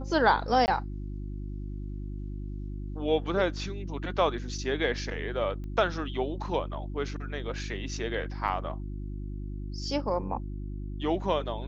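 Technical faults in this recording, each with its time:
hum 50 Hz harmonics 7 -36 dBFS
0.66–0.68 gap 19 ms
5.64 pop -31 dBFS
8.48 gap 4.1 ms

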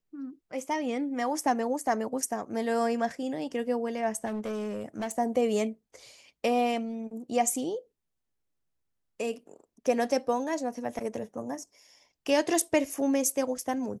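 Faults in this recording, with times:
4.25–5.12 clipped -29.5 dBFS

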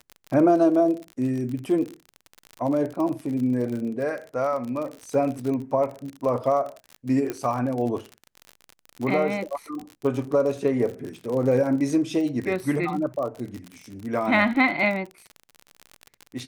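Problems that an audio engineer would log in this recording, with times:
crackle 46/s -30 dBFS
7.3 pop -15 dBFS

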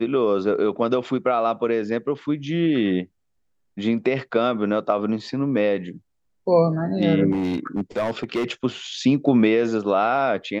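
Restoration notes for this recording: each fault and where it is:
7.31–8.45 clipped -19 dBFS

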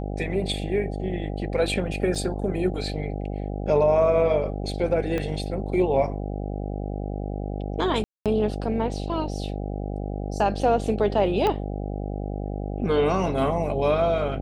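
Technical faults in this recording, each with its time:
buzz 50 Hz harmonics 16 -30 dBFS
2.15–2.16 gap 5.8 ms
5.18 pop -15 dBFS
8.04–8.26 gap 0.217 s
11.47 pop -12 dBFS

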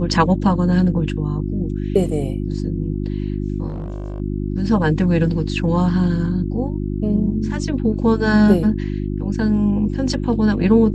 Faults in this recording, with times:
hum 50 Hz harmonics 7 -23 dBFS
3.67–4.2 clipped -23 dBFS

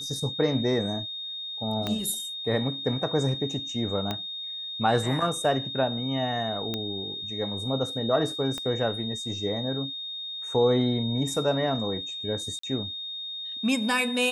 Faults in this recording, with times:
tone 3700 Hz -33 dBFS
1.87 pop -15 dBFS
4.11 pop -15 dBFS
6.74 pop -15 dBFS
8.58 pop -19 dBFS
12.59–12.63 gap 44 ms

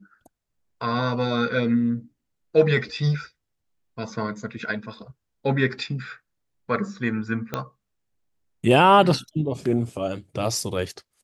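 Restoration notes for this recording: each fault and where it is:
7.54 pop -12 dBFS

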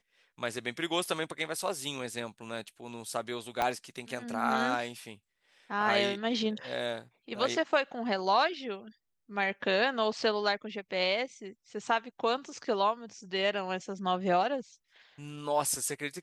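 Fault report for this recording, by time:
3.62 pop -15 dBFS

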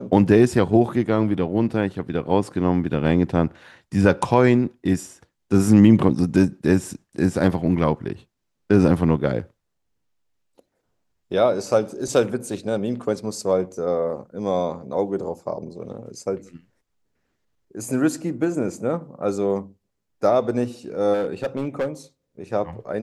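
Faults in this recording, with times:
21.13–21.88 clipped -19 dBFS

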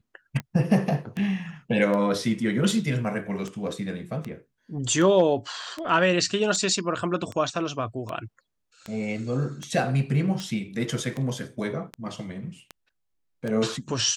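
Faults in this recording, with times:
tick 78 rpm -19 dBFS

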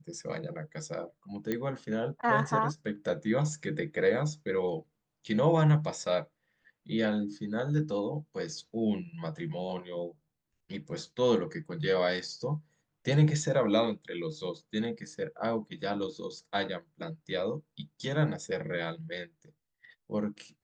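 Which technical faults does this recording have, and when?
1.52 pop -18 dBFS

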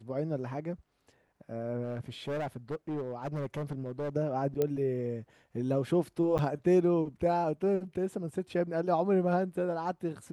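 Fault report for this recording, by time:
1.83–4.1 clipped -31 dBFS
4.62 pop -17 dBFS
6.38–6.39 gap 8.4 ms

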